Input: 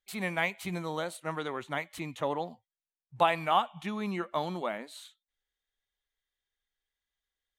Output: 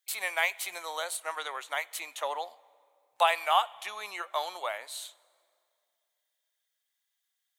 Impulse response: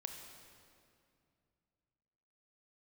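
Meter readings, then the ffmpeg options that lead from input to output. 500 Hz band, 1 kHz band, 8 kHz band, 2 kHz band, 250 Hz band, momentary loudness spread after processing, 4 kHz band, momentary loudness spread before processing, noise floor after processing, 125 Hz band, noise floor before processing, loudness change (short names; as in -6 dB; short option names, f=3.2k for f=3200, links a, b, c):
-2.0 dB, +1.0 dB, +10.5 dB, +3.0 dB, under -20 dB, 12 LU, +5.5 dB, 11 LU, -82 dBFS, under -40 dB, under -85 dBFS, +1.0 dB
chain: -filter_complex "[0:a]highpass=f=590:w=0.5412,highpass=f=590:w=1.3066,highshelf=f=4.4k:g=12,asplit=2[a][b];[1:a]atrim=start_sample=2205[c];[b][c]afir=irnorm=-1:irlink=0,volume=-15dB[d];[a][d]amix=inputs=2:normalize=0"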